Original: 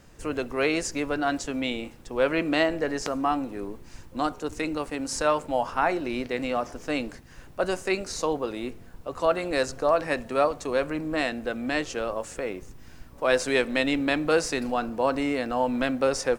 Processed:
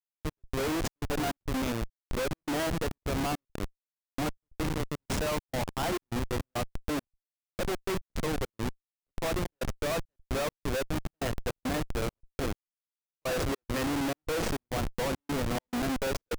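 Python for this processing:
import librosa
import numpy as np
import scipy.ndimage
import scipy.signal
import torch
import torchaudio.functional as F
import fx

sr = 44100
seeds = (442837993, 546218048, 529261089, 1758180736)

y = fx.schmitt(x, sr, flips_db=-27.0)
y = fx.step_gate(y, sr, bpm=103, pattern='xx.xxx.xx.xxx.', floor_db=-60.0, edge_ms=4.5)
y = y * librosa.db_to_amplitude(-2.0)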